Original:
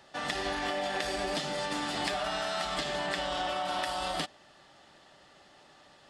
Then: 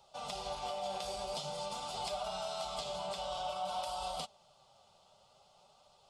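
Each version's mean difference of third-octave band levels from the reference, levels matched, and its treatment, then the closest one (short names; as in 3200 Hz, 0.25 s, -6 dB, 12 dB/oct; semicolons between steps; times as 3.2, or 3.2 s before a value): 4.0 dB: fixed phaser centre 740 Hz, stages 4; flange 0.5 Hz, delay 2.1 ms, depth 9 ms, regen +56%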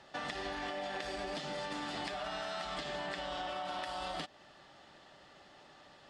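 3.0 dB: compressor 4:1, threshold -37 dBFS, peak gain reduction 8.5 dB; air absorption 54 m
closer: second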